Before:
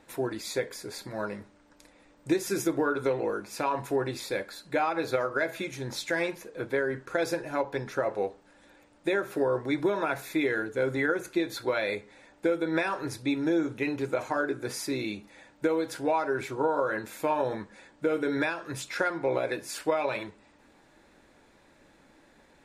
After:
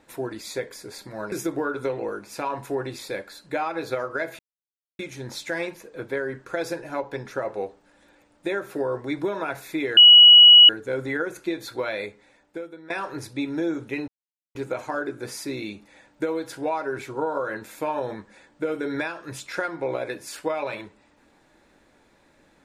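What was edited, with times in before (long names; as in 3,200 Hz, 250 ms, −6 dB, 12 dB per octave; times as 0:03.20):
0:01.32–0:02.53: remove
0:05.60: splice in silence 0.60 s
0:10.58: insert tone 2,920 Hz −6.5 dBFS 0.72 s
0:11.83–0:12.79: fade out, to −21 dB
0:13.97: splice in silence 0.47 s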